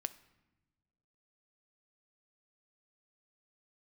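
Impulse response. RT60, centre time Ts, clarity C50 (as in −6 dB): non-exponential decay, 4 ms, 16.5 dB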